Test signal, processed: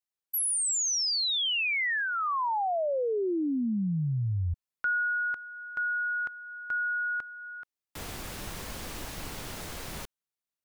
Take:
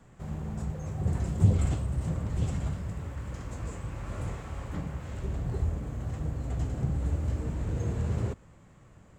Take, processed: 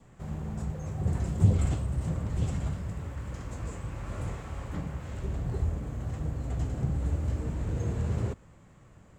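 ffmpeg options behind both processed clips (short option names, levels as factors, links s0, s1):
-af "adynamicequalizer=threshold=0.00891:dfrequency=1500:dqfactor=4.9:tfrequency=1500:tqfactor=4.9:attack=5:release=100:ratio=0.375:range=3:mode=cutabove:tftype=bell"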